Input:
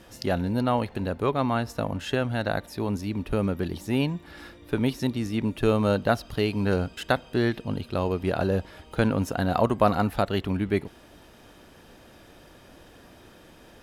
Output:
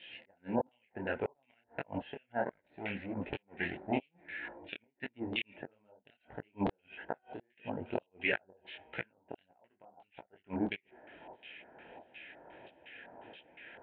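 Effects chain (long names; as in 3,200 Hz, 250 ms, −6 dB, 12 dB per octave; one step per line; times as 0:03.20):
0:02.42–0:04.43: lower of the sound and its delayed copy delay 0.5 ms
hum removal 374.2 Hz, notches 5
gate with flip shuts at −16 dBFS, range −40 dB
auto-filter low-pass square 2.8 Hz 890–2,800 Hz
phaser with its sweep stopped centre 2,800 Hz, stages 4
auto-filter band-pass saw down 1.5 Hz 800–3,700 Hz
high-frequency loss of the air 470 metres
micro pitch shift up and down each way 54 cents
level +17.5 dB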